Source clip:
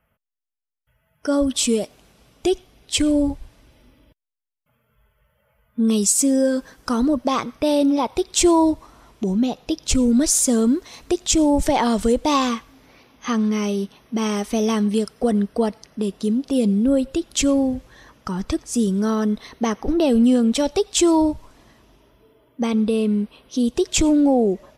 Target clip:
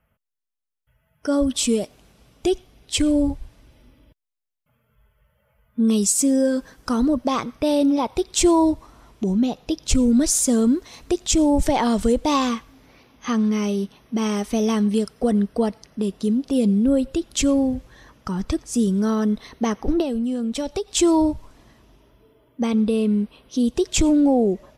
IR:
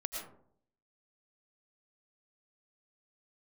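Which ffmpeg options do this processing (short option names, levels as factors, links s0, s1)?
-filter_complex "[0:a]lowshelf=f=210:g=4.5,asettb=1/sr,asplit=3[s0][s1][s2];[s0]atrim=end=20.014[s3];[s1]atrim=start=20.01:end=20.88,asetpts=PTS-STARTPTS,afade=t=in:d=0.004:c=qsin,afade=t=out:st=0.866:d=0.004:c=qsin,acompressor=threshold=0.1:ratio=6[s4];[s2]atrim=start=20.876[s5];[s3][s4]acrossfade=d=0.004:c1=hsin:c2=qsin[s6];[s6][s5]acrossfade=d=0.004:c1=qsin:c2=hsin,volume=0.794"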